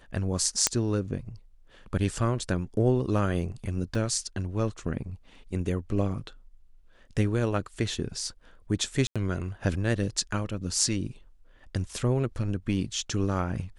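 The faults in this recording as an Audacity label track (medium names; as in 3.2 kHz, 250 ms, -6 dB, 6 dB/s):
0.670000	0.670000	pop -5 dBFS
3.950000	3.950000	dropout 4 ms
9.070000	9.160000	dropout 86 ms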